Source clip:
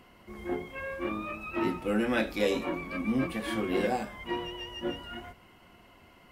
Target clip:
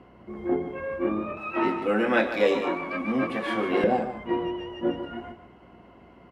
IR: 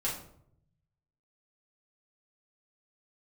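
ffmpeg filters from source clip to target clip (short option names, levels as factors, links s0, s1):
-af "aeval=exprs='val(0)+0.000794*(sin(2*PI*60*n/s)+sin(2*PI*2*60*n/s)/2+sin(2*PI*3*60*n/s)/3+sin(2*PI*4*60*n/s)/4+sin(2*PI*5*60*n/s)/5)':c=same,asetnsamples=n=441:p=0,asendcmd='1.37 bandpass f 930;3.84 bandpass f 350',bandpass=f=330:t=q:w=0.53:csg=0,aecho=1:1:149:0.299,volume=2.51"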